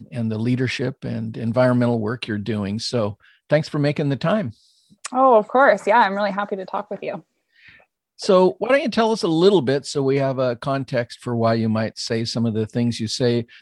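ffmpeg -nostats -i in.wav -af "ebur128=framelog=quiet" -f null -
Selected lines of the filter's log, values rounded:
Integrated loudness:
  I:         -20.4 LUFS
  Threshold: -30.8 LUFS
Loudness range:
  LRA:         3.5 LU
  Threshold: -40.5 LUFS
  LRA low:   -22.5 LUFS
  LRA high:  -19.0 LUFS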